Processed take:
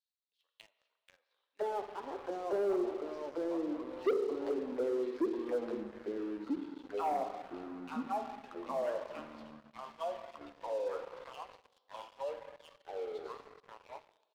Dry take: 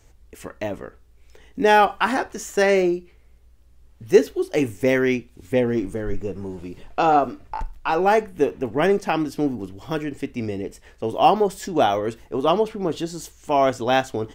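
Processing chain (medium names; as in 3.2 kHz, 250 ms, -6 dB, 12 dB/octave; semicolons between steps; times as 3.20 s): fade out at the end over 3.50 s; Doppler pass-by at 3.53 s, 11 m/s, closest 15 m; amplifier tone stack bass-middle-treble 5-5-5; speakerphone echo 150 ms, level -19 dB; auto-wah 380–4300 Hz, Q 3.5, down, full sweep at -36.5 dBFS; Schroeder reverb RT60 1.6 s, combs from 32 ms, DRR 6 dB; ever faster or slower copies 373 ms, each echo -3 st, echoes 3; ten-band graphic EQ 125 Hz -11 dB, 500 Hz +12 dB, 1 kHz +10 dB, 2 kHz -9 dB, 4 kHz +12 dB, 8 kHz -12 dB; waveshaping leveller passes 3; trim -7.5 dB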